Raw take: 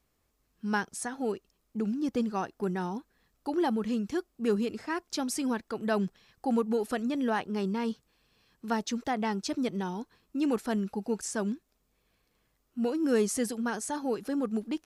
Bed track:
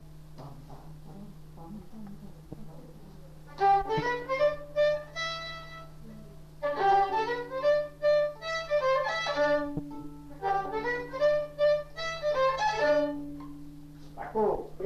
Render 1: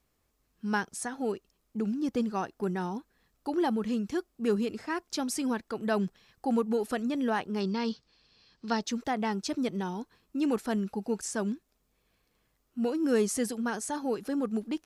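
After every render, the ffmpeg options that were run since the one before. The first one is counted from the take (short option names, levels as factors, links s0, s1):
-filter_complex "[0:a]asettb=1/sr,asplit=3[s0][s1][s2];[s0]atrim=end=7.604[s3];[s1]atrim=start=7.6:end=8.83,asetpts=PTS-STARTPTS,afade=t=in:d=0.004:c=qsin,afade=t=out:st=1.226:d=0.004:c=qsin,lowpass=f=4800:t=q:w=3.4[s4];[s2]atrim=start=8.826[s5];[s3][s4]acrossfade=d=0.004:c1=hsin:c2=qsin[s6];[s6][s5]acrossfade=d=0.004:c1=qsin:c2=hsin"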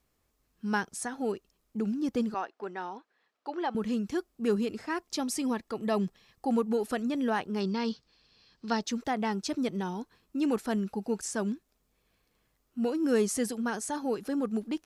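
-filter_complex "[0:a]asettb=1/sr,asplit=3[s0][s1][s2];[s0]atrim=end=2.344[s3];[s1]atrim=start=2.34:end=3.75,asetpts=PTS-STARTPTS,afade=t=in:d=0.004:c=qsin,afade=t=out:st=1.406:d=0.004:c=qsin,highpass=500,lowpass=3800[s4];[s2]atrim=start=3.746[s5];[s3][s4]acrossfade=d=0.004:c1=hsin:c2=qsin[s6];[s6][s5]acrossfade=d=0.004:c1=qsin:c2=hsin,asettb=1/sr,asplit=3[s7][s8][s9];[s7]atrim=end=5.024[s10];[s8]atrim=start=5.02:end=6.55,asetpts=PTS-STARTPTS,afade=t=in:d=0.004:c=qsin,afade=t=out:st=1.526:d=0.004:c=qsin,asuperstop=centerf=1500:order=4:qfactor=7.8[s11];[s9]atrim=start=6.546[s12];[s10][s11]acrossfade=d=0.004:c1=hsin:c2=qsin[s13];[s13][s12]acrossfade=d=0.004:c1=qsin:c2=hsin"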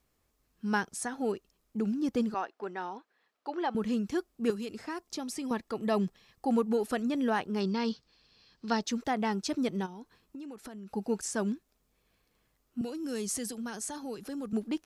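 -filter_complex "[0:a]asettb=1/sr,asplit=3[s0][s1][s2];[s0]atrim=end=4.504[s3];[s1]atrim=start=4.5:end=5.51,asetpts=PTS-STARTPTS,afade=t=in:d=0.004:c=qsin,afade=t=out:st=1.006:d=0.004:c=qsin,acrossover=split=1500|3600[s4][s5][s6];[s4]acompressor=threshold=0.0178:ratio=4[s7];[s5]acompressor=threshold=0.00282:ratio=4[s8];[s6]acompressor=threshold=0.00891:ratio=4[s9];[s7][s8][s9]amix=inputs=3:normalize=0[s10];[s2]atrim=start=5.506[s11];[s3][s10]acrossfade=d=0.004:c1=hsin:c2=qsin[s12];[s12][s11]acrossfade=d=0.004:c1=qsin:c2=hsin,asplit=3[s13][s14][s15];[s13]afade=t=out:st=9.85:d=0.02[s16];[s14]acompressor=threshold=0.01:ratio=16:attack=3.2:release=140:knee=1:detection=peak,afade=t=in:st=9.85:d=0.02,afade=t=out:st=10.91:d=0.02[s17];[s15]afade=t=in:st=10.91:d=0.02[s18];[s16][s17][s18]amix=inputs=3:normalize=0,asettb=1/sr,asplit=3[s19][s20][s21];[s19]atrim=end=12.814[s22];[s20]atrim=start=12.81:end=14.53,asetpts=PTS-STARTPTS,afade=t=in:d=0.004:c=qsin,afade=t=out:st=1.716:d=0.004:c=qsin,acrossover=split=150|3000[s23][s24][s25];[s24]acompressor=threshold=0.00708:ratio=2:attack=3.2:release=140:knee=2.83:detection=peak[s26];[s23][s26][s25]amix=inputs=3:normalize=0[s27];[s21]atrim=start=14.526[s28];[s22][s27]acrossfade=d=0.004:c1=hsin:c2=qsin[s29];[s29][s28]acrossfade=d=0.004:c1=qsin:c2=hsin"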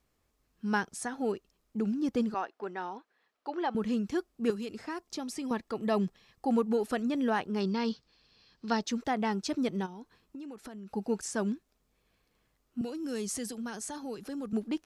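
-af "highshelf=f=8900:g=-5.5"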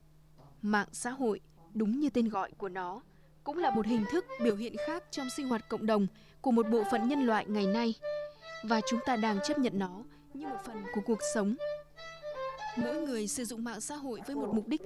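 -filter_complex "[1:a]volume=0.237[s0];[0:a][s0]amix=inputs=2:normalize=0"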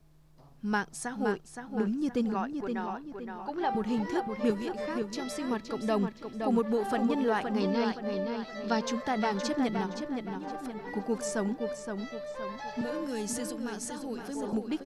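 -filter_complex "[0:a]asplit=2[s0][s1];[s1]adelay=519,lowpass=f=4700:p=1,volume=0.531,asplit=2[s2][s3];[s3]adelay=519,lowpass=f=4700:p=1,volume=0.42,asplit=2[s4][s5];[s5]adelay=519,lowpass=f=4700:p=1,volume=0.42,asplit=2[s6][s7];[s7]adelay=519,lowpass=f=4700:p=1,volume=0.42,asplit=2[s8][s9];[s9]adelay=519,lowpass=f=4700:p=1,volume=0.42[s10];[s0][s2][s4][s6][s8][s10]amix=inputs=6:normalize=0"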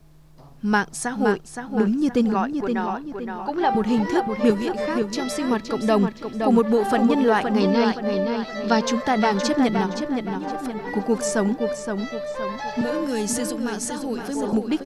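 -af "volume=2.99"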